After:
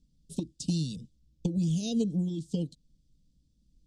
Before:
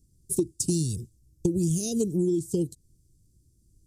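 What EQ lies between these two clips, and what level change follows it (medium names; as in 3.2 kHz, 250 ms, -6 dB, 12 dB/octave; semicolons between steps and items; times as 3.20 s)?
resonant low-pass 3.4 kHz, resonance Q 2.7; static phaser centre 370 Hz, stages 6; 0.0 dB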